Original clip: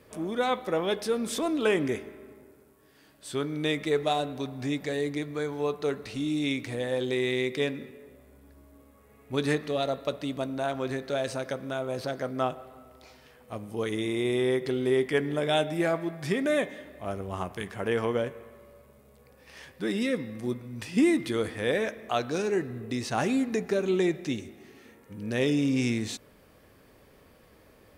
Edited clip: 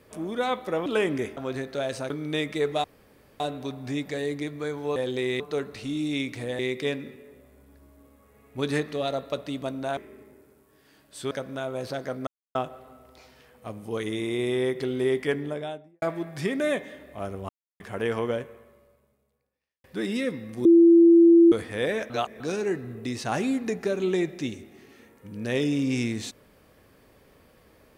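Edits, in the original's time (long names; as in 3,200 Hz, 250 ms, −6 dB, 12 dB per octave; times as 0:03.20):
0:00.86–0:01.56: remove
0:02.07–0:03.41: swap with 0:10.72–0:11.45
0:04.15: splice in room tone 0.56 s
0:06.90–0:07.34: move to 0:05.71
0:12.41: splice in silence 0.28 s
0:15.09–0:15.88: fade out and dull
0:17.35–0:17.66: silence
0:18.20–0:19.70: fade out quadratic
0:20.51–0:21.38: beep over 337 Hz −11 dBFS
0:21.96–0:22.26: reverse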